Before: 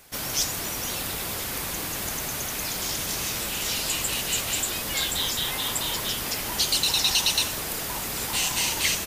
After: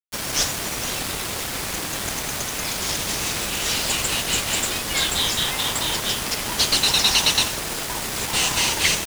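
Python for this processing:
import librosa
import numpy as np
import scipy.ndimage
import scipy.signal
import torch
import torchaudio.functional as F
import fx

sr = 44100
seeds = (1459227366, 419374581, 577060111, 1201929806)

y = fx.cvsd(x, sr, bps=64000)
y = np.where(np.abs(y) >= 10.0 ** (-31.5 / 20.0), y, 0.0)
y = y * 10.0 ** (6.0 / 20.0)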